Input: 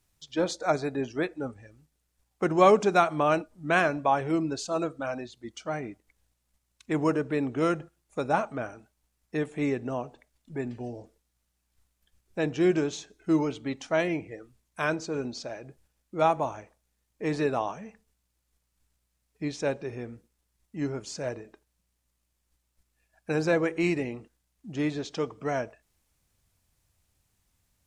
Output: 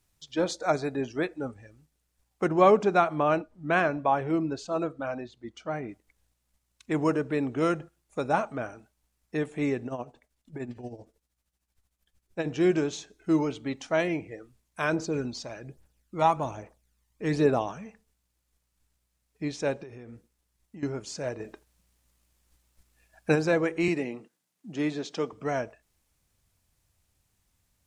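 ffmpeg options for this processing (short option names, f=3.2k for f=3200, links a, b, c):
-filter_complex "[0:a]asettb=1/sr,asplit=3[a][b][c];[a]atrim=end=2.484[d];[b]atrim=start=2.48:end=5.89,asetpts=PTS-STARTPTS,afade=t=in:d=0.004:c=qsin,afade=t=out:st=3.406:d=0.004:c=qsin,lowpass=f=2.5k:p=1[e];[c]atrim=start=5.886[f];[d][e]acrossfade=d=0.004:c1=hsin:c2=qsin[g];[g][f]acrossfade=d=0.004:c1=qsin:c2=hsin,asettb=1/sr,asplit=3[h][i][j];[h]atrim=end=9.864[k];[i]atrim=start=9.86:end=12.49,asetpts=PTS-STARTPTS,afade=t=in:d=0.004:c=qsin,afade=t=out:st=2.626:d=0.004:c=qsin,tremolo=f=13:d=0.69[l];[j]atrim=start=12.486[m];[k][l]acrossfade=d=0.004:c1=hsin:c2=qsin[n];[n][m]acrossfade=d=0.004:c1=qsin:c2=hsin,asplit=3[o][p][q];[o]afade=t=out:st=14.92:d=0.02[r];[p]aphaser=in_gain=1:out_gain=1:delay=1.1:decay=0.49:speed=1.2:type=triangular,afade=t=in:st=14.92:d=0.02,afade=t=out:st=17.85:d=0.02[s];[q]afade=t=in:st=17.85:d=0.02[t];[r][s][t]amix=inputs=3:normalize=0,asettb=1/sr,asplit=3[u][v][w];[u]atrim=end=19.834[x];[v]atrim=start=19.83:end=20.83,asetpts=PTS-STARTPTS,afade=t=in:d=0.004:c=qsin,afade=t=out:st=0.996:d=0.004:c=qsin,acompressor=threshold=-40dB:ratio=12:attack=3.2:release=140:knee=1:detection=peak[y];[w]atrim=start=20.826[z];[x][y]acrossfade=d=0.004:c1=hsin:c2=qsin[aa];[aa][z]acrossfade=d=0.004:c1=qsin:c2=hsin,asplit=3[ab][ac][ad];[ab]afade=t=out:st=21.39:d=0.02[ae];[ac]acontrast=89,afade=t=in:st=21.39:d=0.02,afade=t=out:st=23.34:d=0.02[af];[ad]afade=t=in:st=23.34:d=0.02[ag];[ae][af][ag]amix=inputs=3:normalize=0,asettb=1/sr,asplit=3[ah][ai][aj];[ah]atrim=end=23.884[ak];[ai]atrim=start=23.88:end=25.33,asetpts=PTS-STARTPTS,afade=t=in:d=0.004:c=qsin,afade=t=out:st=1.446:d=0.004:c=qsin,highpass=f=150:w=0.5412,highpass=f=150:w=1.3066[al];[aj]atrim=start=25.326[am];[ak][al]acrossfade=d=0.004:c1=hsin:c2=qsin[an];[an][am]acrossfade=d=0.004:c1=qsin:c2=hsin"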